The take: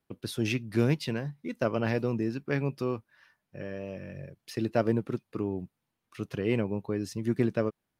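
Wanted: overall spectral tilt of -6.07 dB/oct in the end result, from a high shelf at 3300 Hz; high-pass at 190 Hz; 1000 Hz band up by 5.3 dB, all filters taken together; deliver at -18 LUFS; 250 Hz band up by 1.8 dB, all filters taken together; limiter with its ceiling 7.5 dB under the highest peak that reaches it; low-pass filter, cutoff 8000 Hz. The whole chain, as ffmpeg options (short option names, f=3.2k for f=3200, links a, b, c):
-af "highpass=190,lowpass=8k,equalizer=f=250:t=o:g=3.5,equalizer=f=1k:t=o:g=8,highshelf=f=3.3k:g=-6.5,volume=14dB,alimiter=limit=-4dB:level=0:latency=1"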